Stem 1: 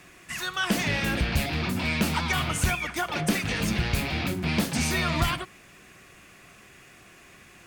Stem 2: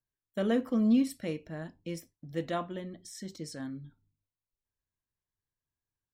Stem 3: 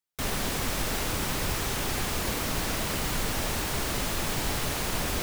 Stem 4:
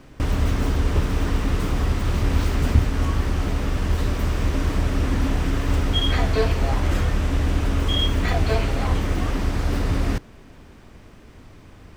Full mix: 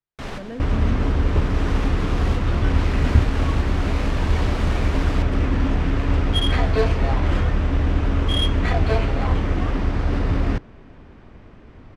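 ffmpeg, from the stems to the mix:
-filter_complex "[0:a]adelay=2050,volume=0.299[s0];[1:a]volume=0.473,asplit=2[s1][s2];[2:a]volume=1[s3];[3:a]adelay=400,volume=1.19[s4];[s2]apad=whole_len=230323[s5];[s3][s5]sidechaincompress=threshold=0.00794:ratio=5:attack=22:release=739[s6];[s0][s1][s6][s4]amix=inputs=4:normalize=0,adynamicsmooth=sensitivity=1.5:basefreq=3100"

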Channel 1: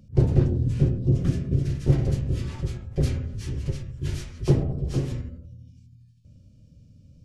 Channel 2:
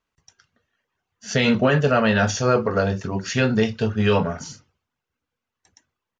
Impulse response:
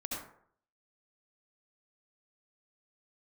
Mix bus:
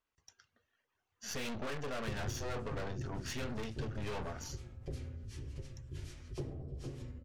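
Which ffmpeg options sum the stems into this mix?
-filter_complex "[0:a]adelay=1900,volume=0.335,asplit=2[s0][s1];[s1]volume=0.158[s2];[1:a]dynaudnorm=f=390:g=5:m=2.82,aeval=exprs='(tanh(14.1*val(0)+0.75)-tanh(0.75))/14.1':c=same,volume=0.668[s3];[2:a]atrim=start_sample=2205[s4];[s2][s4]afir=irnorm=-1:irlink=0[s5];[s0][s3][s5]amix=inputs=3:normalize=0,equalizer=f=170:t=o:w=0.68:g=-8,acompressor=threshold=0.00562:ratio=2"

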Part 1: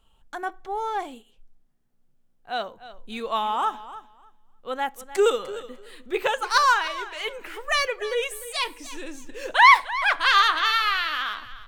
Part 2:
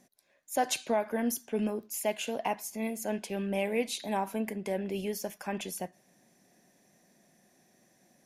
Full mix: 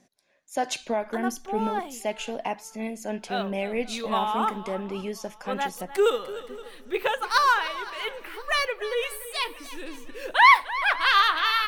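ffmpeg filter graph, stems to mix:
-filter_complex "[0:a]equalizer=f=7000:w=2:g=-9.5,adelay=800,volume=0.841,asplit=2[s0][s1];[s1]volume=0.0944[s2];[1:a]lowpass=6400,volume=1.19[s3];[s2]aecho=0:1:520|1040|1560|2080|2600|3120|3640:1|0.5|0.25|0.125|0.0625|0.0312|0.0156[s4];[s0][s3][s4]amix=inputs=3:normalize=0,highshelf=f=7800:g=4.5"

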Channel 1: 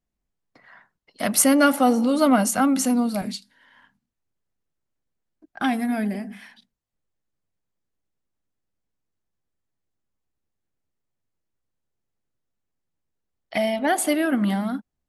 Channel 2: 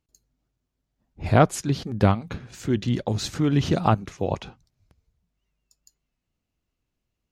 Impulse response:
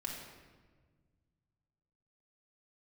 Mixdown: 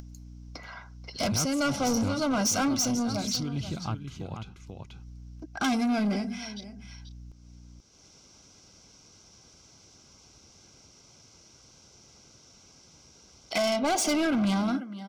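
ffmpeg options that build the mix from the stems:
-filter_complex "[0:a]highpass=50,lowpass=f=5700:t=q:w=8.1,volume=1.33,asplit=2[s0][s1];[s1]volume=0.0944[s2];[1:a]equalizer=f=570:t=o:w=1.6:g=-10,aeval=exprs='val(0)+0.00398*(sin(2*PI*60*n/s)+sin(2*PI*2*60*n/s)/2+sin(2*PI*3*60*n/s)/3+sin(2*PI*4*60*n/s)/4+sin(2*PI*5*60*n/s)/5)':c=same,volume=0.376,asplit=3[s3][s4][s5];[s4]volume=0.316[s6];[s5]apad=whole_len=665126[s7];[s0][s7]sidechaincompress=threshold=0.0112:ratio=4:attack=33:release=513[s8];[s2][s6]amix=inputs=2:normalize=0,aecho=0:1:485:1[s9];[s8][s3][s9]amix=inputs=3:normalize=0,acompressor=mode=upward:threshold=0.0224:ratio=2.5,asoftclip=type=tanh:threshold=0.075,asuperstop=centerf=1800:order=12:qfactor=6"

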